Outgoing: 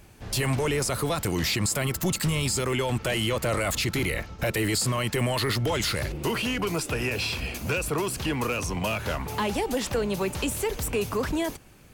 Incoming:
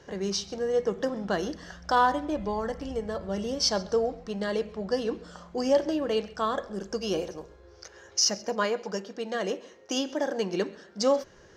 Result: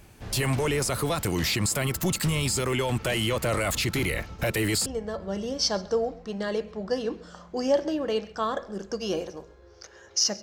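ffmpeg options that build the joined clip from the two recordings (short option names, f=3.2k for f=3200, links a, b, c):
-filter_complex "[0:a]apad=whole_dur=10.42,atrim=end=10.42,atrim=end=4.862[a];[1:a]atrim=start=2.868:end=8.43[b];[a][b]acrossfade=d=0.004:c1=hsin:c2=hsin"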